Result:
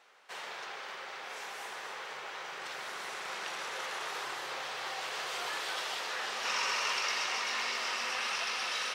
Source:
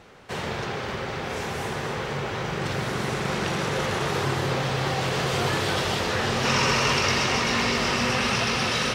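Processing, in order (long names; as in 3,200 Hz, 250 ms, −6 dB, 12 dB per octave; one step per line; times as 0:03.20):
high-pass filter 810 Hz 12 dB per octave
level −8.5 dB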